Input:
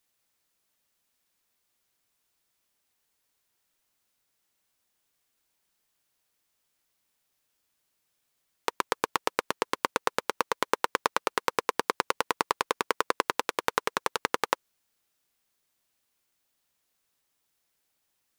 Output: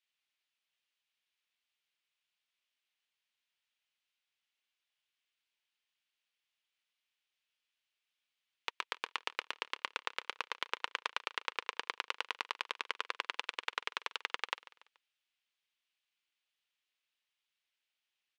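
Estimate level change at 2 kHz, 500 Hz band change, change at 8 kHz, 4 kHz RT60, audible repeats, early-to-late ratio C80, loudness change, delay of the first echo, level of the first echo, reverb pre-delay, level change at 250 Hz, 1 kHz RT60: −6.5 dB, −19.0 dB, −16.0 dB, no reverb audible, 3, no reverb audible, −9.0 dB, 143 ms, −18.5 dB, no reverb audible, −22.0 dB, no reverb audible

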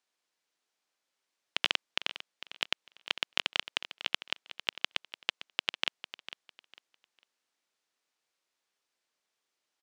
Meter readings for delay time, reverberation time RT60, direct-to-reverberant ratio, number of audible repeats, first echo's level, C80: 451 ms, no reverb audible, no reverb audible, 2, −13.5 dB, no reverb audible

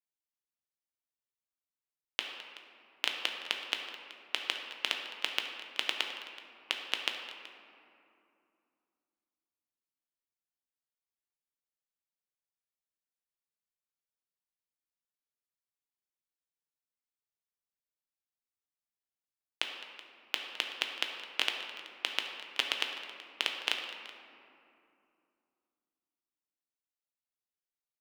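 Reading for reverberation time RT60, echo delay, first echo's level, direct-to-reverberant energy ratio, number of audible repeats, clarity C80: 2.7 s, 211 ms, −17.0 dB, 2.0 dB, 2, 5.5 dB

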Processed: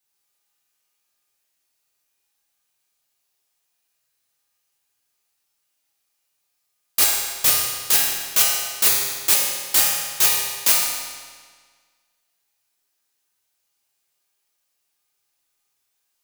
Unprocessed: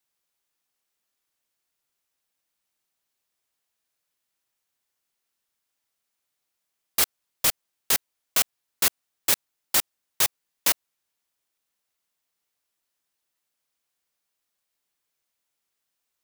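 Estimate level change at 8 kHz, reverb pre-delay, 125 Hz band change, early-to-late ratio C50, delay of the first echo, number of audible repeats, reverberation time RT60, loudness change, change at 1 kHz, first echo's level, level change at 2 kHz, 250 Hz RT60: +8.0 dB, 7 ms, +3.5 dB, 0.0 dB, no echo audible, no echo audible, 1.6 s, +7.0 dB, +5.0 dB, no echo audible, +5.5 dB, 1.6 s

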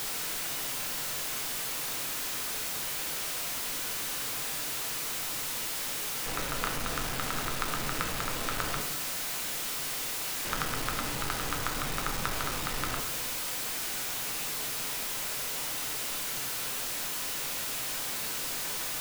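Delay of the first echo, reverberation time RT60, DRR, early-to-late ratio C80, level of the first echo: no echo audible, 0.90 s, 2.5 dB, 9.5 dB, no echo audible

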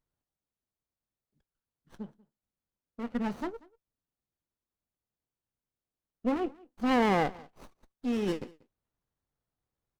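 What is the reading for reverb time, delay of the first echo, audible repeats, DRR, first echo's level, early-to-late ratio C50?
no reverb audible, 188 ms, 1, no reverb audible, −23.5 dB, no reverb audible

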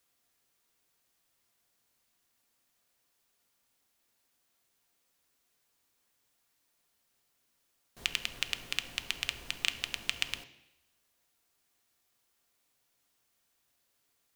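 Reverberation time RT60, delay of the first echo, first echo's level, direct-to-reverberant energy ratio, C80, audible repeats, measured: 0.85 s, no echo audible, no echo audible, 8.0 dB, 16.0 dB, no echo audible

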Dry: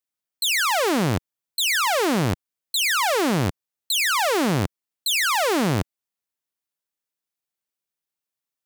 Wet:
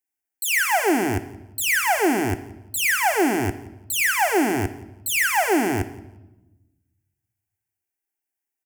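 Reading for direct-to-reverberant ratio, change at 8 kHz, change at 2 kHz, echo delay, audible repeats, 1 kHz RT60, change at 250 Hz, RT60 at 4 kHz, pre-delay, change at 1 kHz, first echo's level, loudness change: 8.5 dB, +0.5 dB, +2.5 dB, 173 ms, 1, 0.90 s, +1.5 dB, 0.80 s, 3 ms, +1.0 dB, −21.5 dB, 0.0 dB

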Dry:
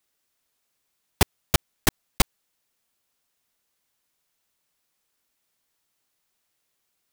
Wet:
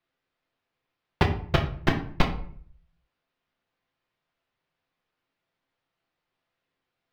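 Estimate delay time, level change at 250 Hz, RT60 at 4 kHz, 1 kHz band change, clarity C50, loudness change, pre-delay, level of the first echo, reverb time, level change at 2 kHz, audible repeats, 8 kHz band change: no echo audible, +2.0 dB, 0.35 s, +1.0 dB, 9.5 dB, −1.5 dB, 6 ms, no echo audible, 0.55 s, −0.5 dB, no echo audible, −22.5 dB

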